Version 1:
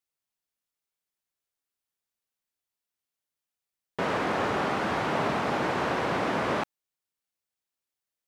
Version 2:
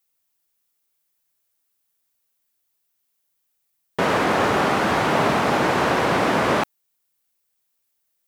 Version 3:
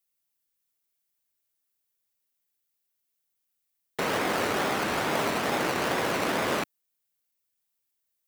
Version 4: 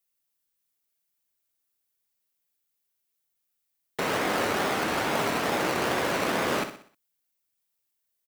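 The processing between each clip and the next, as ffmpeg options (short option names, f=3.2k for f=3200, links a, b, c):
-af "highshelf=f=10k:g=12,volume=8dB"
-filter_complex "[0:a]acrossover=split=240|980|7600[a][b][c][d];[a]alimiter=level_in=5.5dB:limit=-24dB:level=0:latency=1,volume=-5.5dB[e];[b]acrusher=samples=21:mix=1:aa=0.000001:lfo=1:lforange=12.6:lforate=2.3[f];[e][f][c][d]amix=inputs=4:normalize=0,volume=-6.5dB"
-af "aecho=1:1:62|124|186|248|310:0.335|0.144|0.0619|0.0266|0.0115"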